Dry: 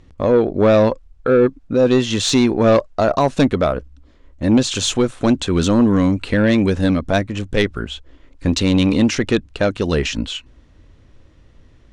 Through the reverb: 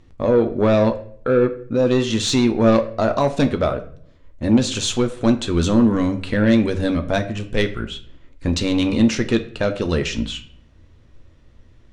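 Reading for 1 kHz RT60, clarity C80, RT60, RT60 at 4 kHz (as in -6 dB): 0.50 s, 17.0 dB, 0.55 s, 0.40 s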